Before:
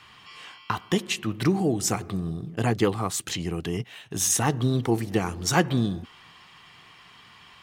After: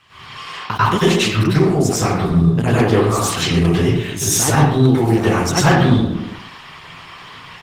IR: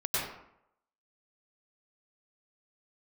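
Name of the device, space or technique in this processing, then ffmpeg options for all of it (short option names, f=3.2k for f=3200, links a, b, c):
speakerphone in a meeting room: -filter_complex "[1:a]atrim=start_sample=2205[a];[0:a][a]afir=irnorm=-1:irlink=0,asplit=2[b][c];[c]adelay=120,highpass=300,lowpass=3.4k,asoftclip=type=hard:threshold=-10dB,volume=-11dB[d];[b][d]amix=inputs=2:normalize=0,dynaudnorm=f=110:g=3:m=8dB" -ar 48000 -c:a libopus -b:a 16k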